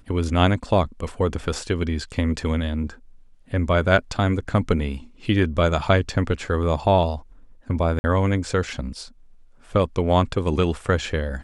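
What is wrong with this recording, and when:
7.99–8.04 s: dropout 50 ms

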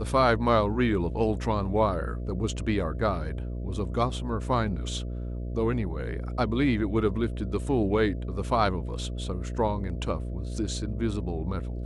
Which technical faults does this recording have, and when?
buzz 60 Hz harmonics 11 -33 dBFS

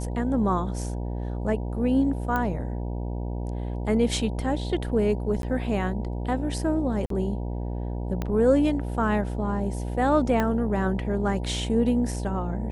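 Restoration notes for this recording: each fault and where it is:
buzz 60 Hz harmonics 16 -30 dBFS
2.36 s: pop -15 dBFS
5.42–5.43 s: dropout 12 ms
7.06–7.10 s: dropout 43 ms
8.22 s: pop -16 dBFS
10.40 s: pop -12 dBFS

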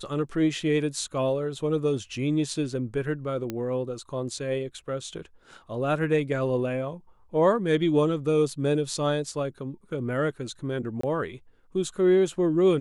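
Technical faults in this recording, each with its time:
3.50 s: pop -17 dBFS
11.01–11.03 s: dropout 24 ms

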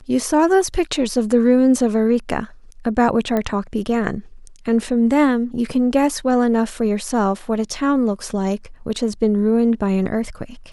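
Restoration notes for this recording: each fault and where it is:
3.37 s: pop -10 dBFS

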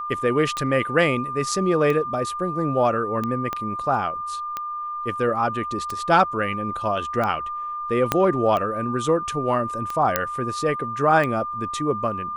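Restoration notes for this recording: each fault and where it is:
tick 45 rpm -14 dBFS
whine 1.2 kHz -27 dBFS
3.53 s: pop -13 dBFS
8.12 s: pop -4 dBFS
10.16 s: pop -3 dBFS

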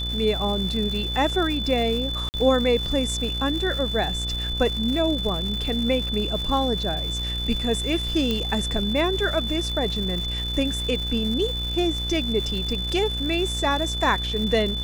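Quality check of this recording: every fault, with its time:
buzz 60 Hz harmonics 31 -30 dBFS
crackle 300 per s -30 dBFS
whine 3.5 kHz -28 dBFS
2.29–2.34 s: dropout 49 ms
8.31 s: pop -12 dBFS

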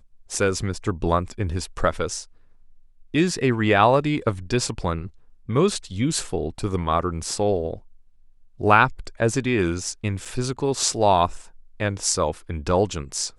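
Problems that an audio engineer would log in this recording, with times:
10.25–10.26 s: dropout 5.9 ms

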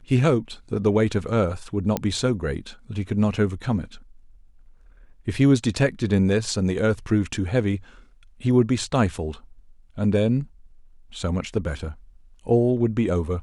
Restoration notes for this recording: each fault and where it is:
1.97 s: pop -9 dBFS

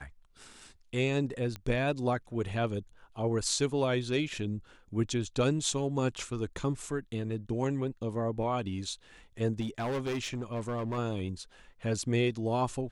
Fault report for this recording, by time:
1.56 s: pop -24 dBFS
9.60–10.99 s: clipped -29.5 dBFS

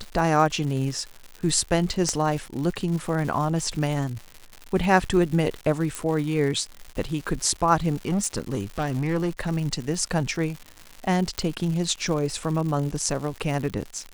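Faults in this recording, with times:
crackle 200 per s -31 dBFS
2.09 s: pop -13 dBFS
5.95 s: pop
8.05–9.50 s: clipped -20.5 dBFS
11.38 s: pop -12 dBFS

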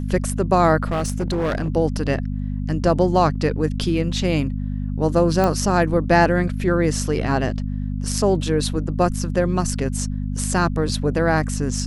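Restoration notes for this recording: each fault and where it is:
hum 50 Hz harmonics 5 -25 dBFS
0.90–1.70 s: clipped -18 dBFS
5.44 s: pop -8 dBFS

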